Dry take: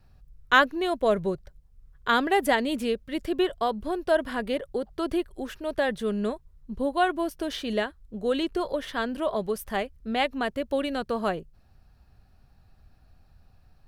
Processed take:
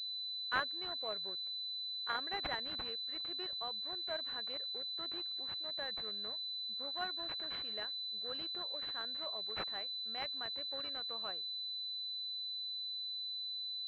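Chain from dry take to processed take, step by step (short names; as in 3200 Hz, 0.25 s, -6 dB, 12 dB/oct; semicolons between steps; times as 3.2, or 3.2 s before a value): differentiator; pulse-width modulation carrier 4000 Hz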